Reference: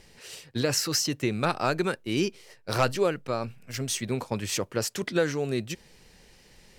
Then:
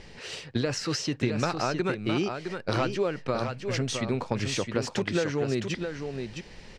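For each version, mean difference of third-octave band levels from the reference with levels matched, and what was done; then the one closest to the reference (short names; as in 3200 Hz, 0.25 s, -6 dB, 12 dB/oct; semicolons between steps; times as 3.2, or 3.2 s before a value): 7.5 dB: compressor 5:1, threshold -33 dBFS, peak gain reduction 13.5 dB; air absorption 110 m; on a send: echo 0.663 s -6.5 dB; on the sum: gain +8.5 dB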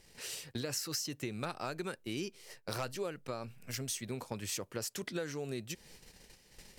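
4.5 dB: gate -53 dBFS, range -11 dB; high shelf 6300 Hz +8 dB; compressor 3:1, threshold -42 dBFS, peak gain reduction 17.5 dB; gain +1.5 dB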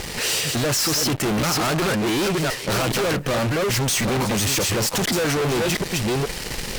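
13.0 dB: reverse delay 0.417 s, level -8 dB; in parallel at -2 dB: compressor, threshold -36 dBFS, peak gain reduction 17 dB; on the sum: fuzz box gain 47 dB, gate -51 dBFS; gain -7 dB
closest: second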